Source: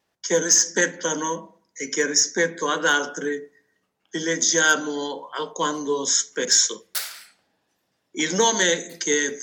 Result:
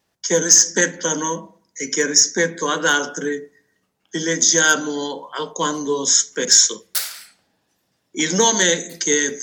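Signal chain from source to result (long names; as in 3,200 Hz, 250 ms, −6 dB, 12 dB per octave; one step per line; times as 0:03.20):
bass and treble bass +5 dB, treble +4 dB
level +2 dB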